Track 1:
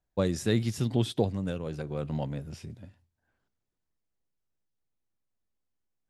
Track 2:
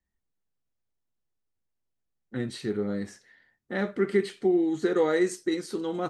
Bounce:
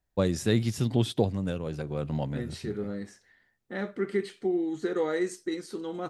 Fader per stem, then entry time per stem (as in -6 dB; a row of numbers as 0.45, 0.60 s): +1.5, -4.5 dB; 0.00, 0.00 s